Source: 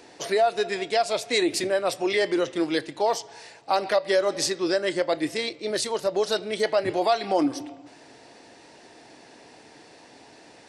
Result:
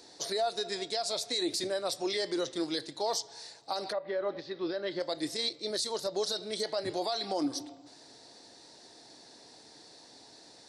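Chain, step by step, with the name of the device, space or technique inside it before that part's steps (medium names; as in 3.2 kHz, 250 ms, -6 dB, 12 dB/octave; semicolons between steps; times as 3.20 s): over-bright horn tweeter (resonant high shelf 3.3 kHz +6 dB, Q 3; peak limiter -15 dBFS, peak gain reduction 10.5 dB); 3.91–4.99 s: low-pass 2.1 kHz -> 3.9 kHz 24 dB/octave; trim -7.5 dB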